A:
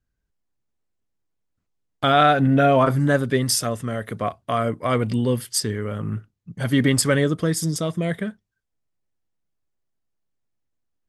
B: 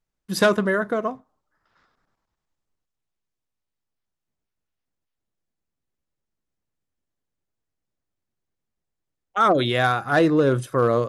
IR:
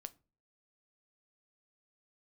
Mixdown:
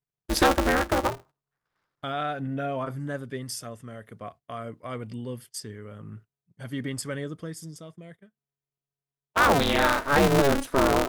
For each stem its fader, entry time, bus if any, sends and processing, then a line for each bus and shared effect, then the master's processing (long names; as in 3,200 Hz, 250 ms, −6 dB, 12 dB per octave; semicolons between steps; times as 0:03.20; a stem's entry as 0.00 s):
−14.5 dB, 0.00 s, send −17.5 dB, notch filter 3,900 Hz, Q 12; automatic ducking −23 dB, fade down 1.95 s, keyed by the second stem
+2.0 dB, 0.00 s, no send, ring modulator with a square carrier 140 Hz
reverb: on, pre-delay 7 ms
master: noise gate −47 dBFS, range −16 dB; downward compressor 1.5 to 1, threshold −24 dBFS, peak gain reduction 5 dB